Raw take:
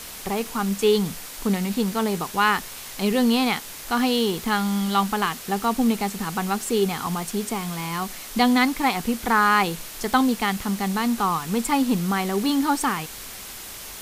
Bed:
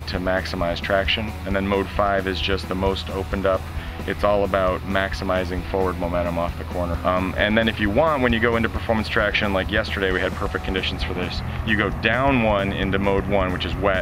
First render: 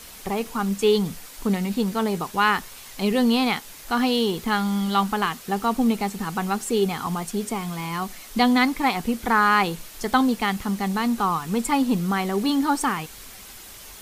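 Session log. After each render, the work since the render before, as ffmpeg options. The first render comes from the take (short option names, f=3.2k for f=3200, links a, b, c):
-af "afftdn=nr=6:nf=-38"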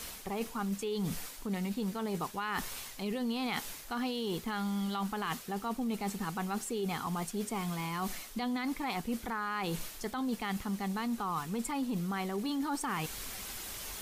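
-af "alimiter=limit=-15.5dB:level=0:latency=1:release=21,areverse,acompressor=threshold=-33dB:ratio=5,areverse"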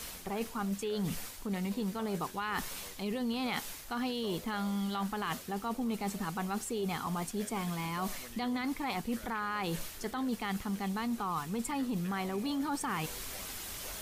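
-filter_complex "[1:a]volume=-33dB[a];[0:a][a]amix=inputs=2:normalize=0"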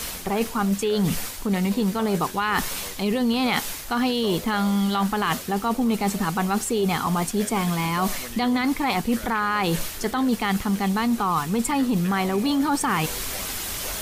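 -af "volume=12dB"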